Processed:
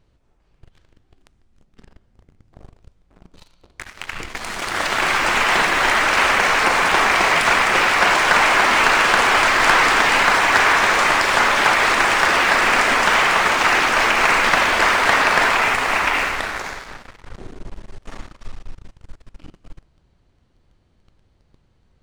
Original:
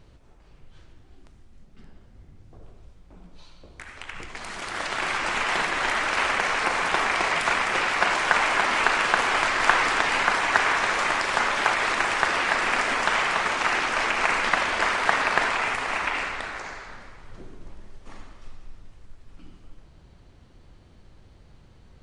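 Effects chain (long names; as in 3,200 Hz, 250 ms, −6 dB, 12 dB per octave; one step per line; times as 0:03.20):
leveller curve on the samples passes 3
level −2.5 dB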